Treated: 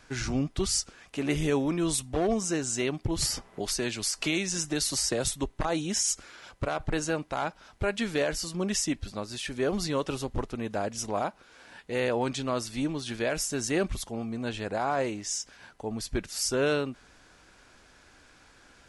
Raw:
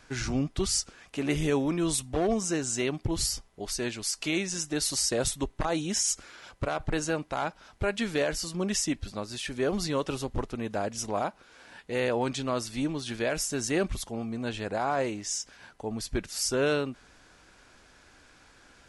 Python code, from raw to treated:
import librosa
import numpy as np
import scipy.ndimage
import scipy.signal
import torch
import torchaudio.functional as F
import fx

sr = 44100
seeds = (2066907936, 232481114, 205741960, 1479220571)

y = fx.band_squash(x, sr, depth_pct=70, at=(3.22, 5.26))